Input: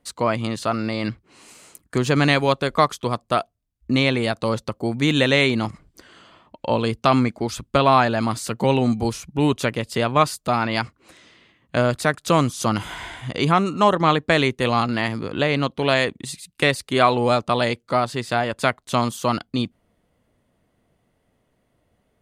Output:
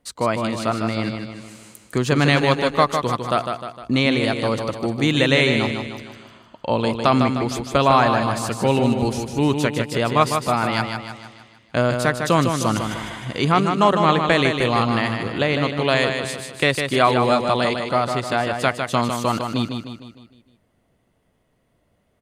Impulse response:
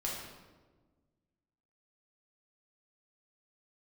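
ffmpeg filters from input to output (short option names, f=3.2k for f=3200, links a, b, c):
-af "aecho=1:1:153|306|459|612|765|918:0.501|0.246|0.12|0.059|0.0289|0.0142"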